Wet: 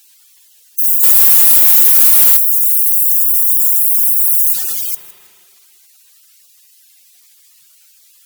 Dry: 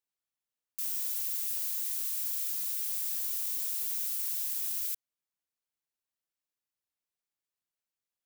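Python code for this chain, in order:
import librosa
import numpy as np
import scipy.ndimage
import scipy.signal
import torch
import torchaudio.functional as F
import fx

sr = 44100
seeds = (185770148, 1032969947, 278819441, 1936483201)

p1 = fx.high_shelf(x, sr, hz=2300.0, db=8.0)
p2 = fx.power_curve(p1, sr, exponent=0.7)
p3 = scipy.signal.sosfilt(scipy.signal.butter(2, 86.0, 'highpass', fs=sr, output='sos'), p2)
p4 = fx.fold_sine(p3, sr, drive_db=8, ceiling_db=-12.0)
p5 = fx.high_shelf(p4, sr, hz=fx.line((4.52, 7800.0), (4.93, 5300.0)), db=-8.0, at=(4.52, 4.93), fade=0.02)
p6 = fx.rev_spring(p5, sr, rt60_s=2.5, pass_ms=(38,), chirp_ms=30, drr_db=17.5)
p7 = fx.spec_gate(p6, sr, threshold_db=-10, keep='strong')
p8 = p7 + fx.echo_feedback(p7, sr, ms=160, feedback_pct=31, wet_db=-18.0, dry=0)
p9 = fx.leveller(p8, sr, passes=2, at=(1.03, 2.37))
y = F.gain(torch.from_numpy(p9), 6.0).numpy()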